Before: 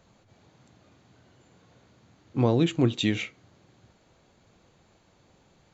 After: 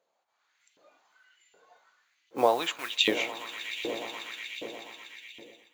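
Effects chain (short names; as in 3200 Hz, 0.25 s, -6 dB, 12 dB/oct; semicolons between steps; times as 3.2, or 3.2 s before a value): swelling echo 0.121 s, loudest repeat 5, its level -17 dB; modulation noise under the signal 29 dB; spectral noise reduction 11 dB; LFO high-pass saw up 1.3 Hz 460–2900 Hz; AGC gain up to 10.5 dB; gain -6 dB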